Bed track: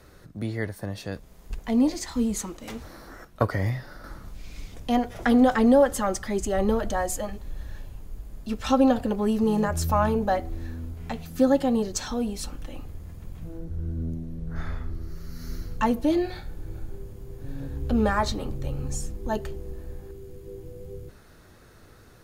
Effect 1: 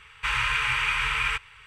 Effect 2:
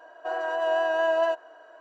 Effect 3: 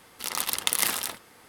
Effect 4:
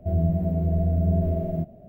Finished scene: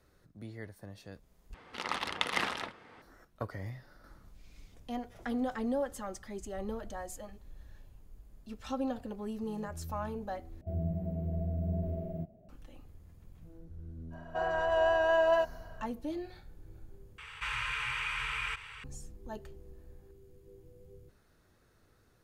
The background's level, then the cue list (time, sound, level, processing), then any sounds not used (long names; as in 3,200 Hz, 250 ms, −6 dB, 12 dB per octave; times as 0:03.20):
bed track −15 dB
0:01.54: overwrite with 3 + low-pass filter 2,600 Hz
0:10.61: overwrite with 4 −11.5 dB
0:14.10: mix in 2 −2.5 dB, fades 0.05 s
0:17.18: overwrite with 1 −11 dB + envelope flattener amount 50%